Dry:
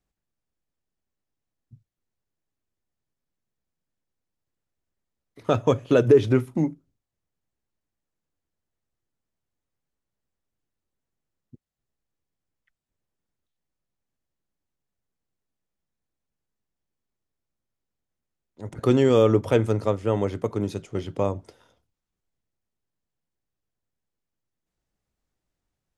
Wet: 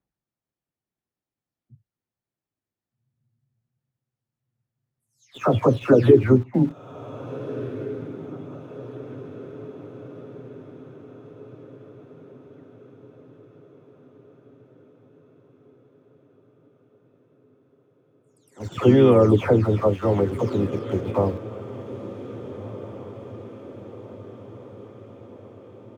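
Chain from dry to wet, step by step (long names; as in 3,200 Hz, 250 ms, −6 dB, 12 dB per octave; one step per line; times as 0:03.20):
every frequency bin delayed by itself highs early, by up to 360 ms
high-pass filter 60 Hz 12 dB per octave
pitch-shifted copies added −3 semitones −11 dB
in parallel at −4 dB: centre clipping without the shift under −34.5 dBFS
on the sum: high-shelf EQ 3,900 Hz −11 dB
on a send: feedback delay with all-pass diffusion 1,653 ms, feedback 58%, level −15 dB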